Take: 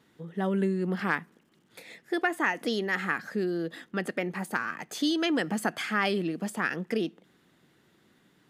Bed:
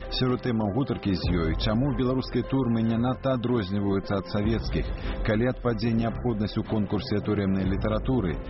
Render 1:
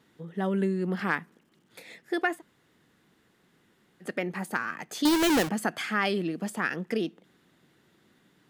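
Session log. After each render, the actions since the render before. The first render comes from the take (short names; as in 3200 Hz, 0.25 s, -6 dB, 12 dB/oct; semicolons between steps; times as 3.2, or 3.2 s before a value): 2.37–4.05 room tone, crossfade 0.10 s; 5.05–5.49 half-waves squared off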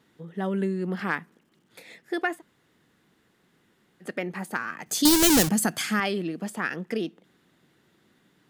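4.86–6 tone controls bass +10 dB, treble +14 dB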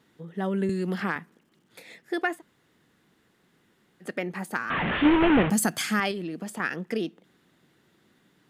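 0.69–1.16 three-band squash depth 100%; 4.7–5.5 delta modulation 16 kbps, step -20.5 dBFS; 6.11–6.6 compressor, threshold -29 dBFS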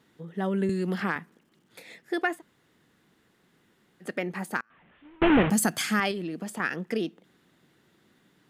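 4.6–5.22 flipped gate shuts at -27 dBFS, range -33 dB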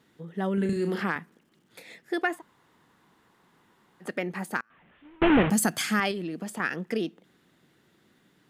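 0.54–1.03 flutter echo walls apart 6 m, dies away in 0.32 s; 2.33–4.09 bell 980 Hz +11 dB 0.75 oct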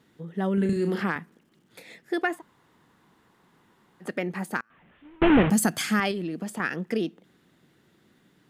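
low shelf 370 Hz +3.5 dB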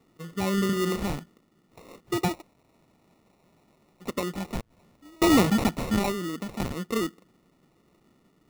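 notch comb 1200 Hz; sample-rate reducer 1600 Hz, jitter 0%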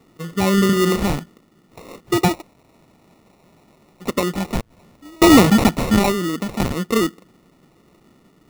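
gain +9.5 dB; limiter -1 dBFS, peak gain reduction 1.5 dB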